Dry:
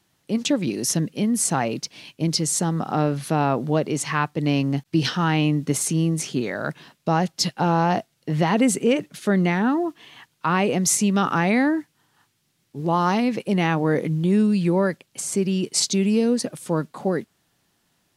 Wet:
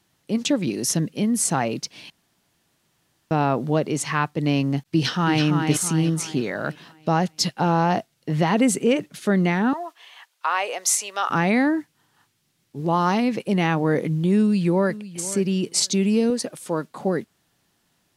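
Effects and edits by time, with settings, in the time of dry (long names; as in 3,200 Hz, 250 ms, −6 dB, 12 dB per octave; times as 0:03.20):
0:02.10–0:03.31: fill with room tone
0:04.82–0:05.43: delay throw 330 ms, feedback 45%, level −5 dB
0:09.73–0:11.30: high-pass filter 570 Hz 24 dB per octave
0:14.39–0:15.06: delay throw 500 ms, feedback 15%, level −16 dB
0:16.30–0:16.91: bass and treble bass −8 dB, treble 0 dB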